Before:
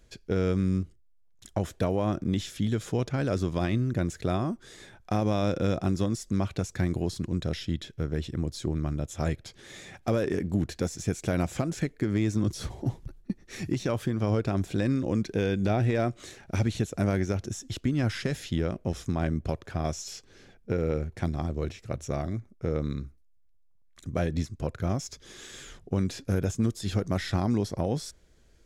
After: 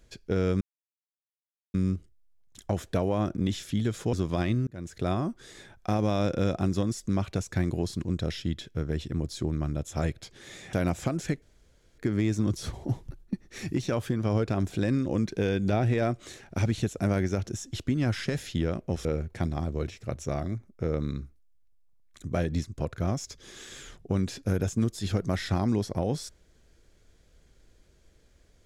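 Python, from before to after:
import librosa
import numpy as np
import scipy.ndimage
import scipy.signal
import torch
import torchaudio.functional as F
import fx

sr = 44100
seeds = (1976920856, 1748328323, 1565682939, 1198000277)

y = fx.edit(x, sr, fx.insert_silence(at_s=0.61, length_s=1.13),
    fx.cut(start_s=3.0, length_s=0.36),
    fx.fade_in_span(start_s=3.9, length_s=0.43),
    fx.cut(start_s=9.96, length_s=1.3),
    fx.insert_room_tone(at_s=11.95, length_s=0.56),
    fx.cut(start_s=19.02, length_s=1.85), tone=tone)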